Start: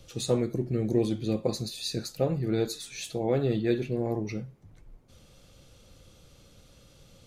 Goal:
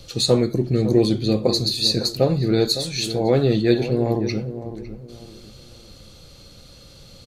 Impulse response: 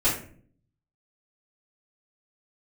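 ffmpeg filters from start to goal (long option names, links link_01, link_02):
-filter_complex "[0:a]equalizer=frequency=4300:width_type=o:width=0.22:gain=12,asplit=2[link_01][link_02];[link_02]adelay=556,lowpass=frequency=1100:poles=1,volume=-11dB,asplit=2[link_03][link_04];[link_04]adelay=556,lowpass=frequency=1100:poles=1,volume=0.32,asplit=2[link_05][link_06];[link_06]adelay=556,lowpass=frequency=1100:poles=1,volume=0.32[link_07];[link_01][link_03][link_05][link_07]amix=inputs=4:normalize=0,volume=8.5dB"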